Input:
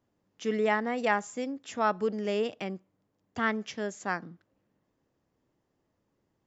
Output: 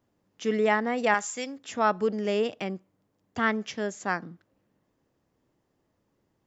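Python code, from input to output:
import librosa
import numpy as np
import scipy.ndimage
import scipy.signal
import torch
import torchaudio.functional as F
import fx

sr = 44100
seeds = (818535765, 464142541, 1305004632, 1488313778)

y = fx.tilt_shelf(x, sr, db=-7.5, hz=970.0, at=(1.14, 1.58))
y = F.gain(torch.from_numpy(y), 3.0).numpy()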